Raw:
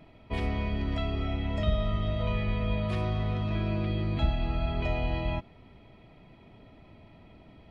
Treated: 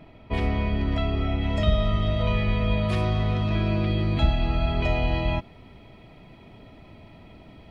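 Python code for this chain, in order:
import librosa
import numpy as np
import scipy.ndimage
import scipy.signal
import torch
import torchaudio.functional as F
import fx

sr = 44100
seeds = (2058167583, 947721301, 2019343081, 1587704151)

y = fx.high_shelf(x, sr, hz=4700.0, db=fx.steps((0.0, -5.0), (1.41, 5.5)))
y = y * 10.0 ** (5.5 / 20.0)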